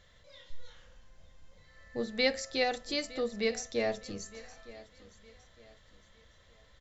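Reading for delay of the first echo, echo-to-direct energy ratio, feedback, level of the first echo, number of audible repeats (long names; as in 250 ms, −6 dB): 912 ms, −18.5 dB, 35%, −19.0 dB, 2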